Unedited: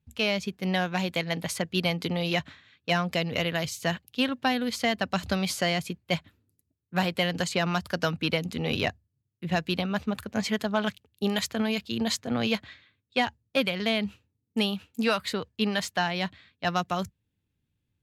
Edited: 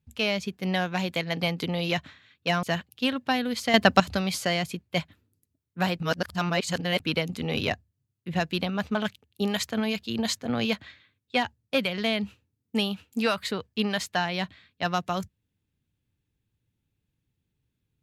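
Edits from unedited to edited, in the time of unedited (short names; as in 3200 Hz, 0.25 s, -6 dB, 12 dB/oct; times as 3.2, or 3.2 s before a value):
1.41–1.83 cut
3.05–3.79 cut
4.9–5.16 gain +10 dB
7.16–8.16 reverse
10.11–10.77 cut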